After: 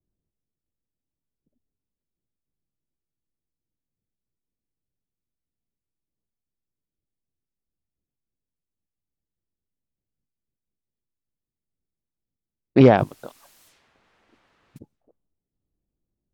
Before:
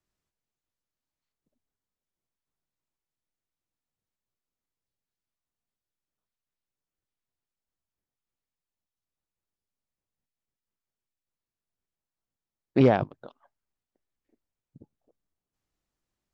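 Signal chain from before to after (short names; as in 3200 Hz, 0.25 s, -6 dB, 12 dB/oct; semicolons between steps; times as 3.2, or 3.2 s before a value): 12.97–14.77 added noise white -62 dBFS; low-pass opened by the level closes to 330 Hz, open at -51.5 dBFS; gain +6.5 dB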